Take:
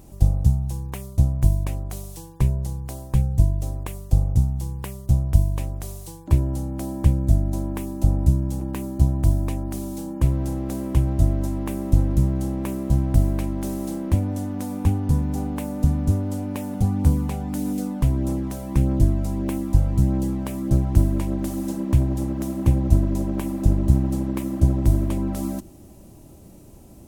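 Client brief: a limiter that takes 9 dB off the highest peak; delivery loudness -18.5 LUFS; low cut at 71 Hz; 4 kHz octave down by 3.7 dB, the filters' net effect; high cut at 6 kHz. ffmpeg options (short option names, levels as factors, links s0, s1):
-af "highpass=71,lowpass=6000,equalizer=f=4000:t=o:g=-4,volume=2.51,alimiter=limit=0.531:level=0:latency=1"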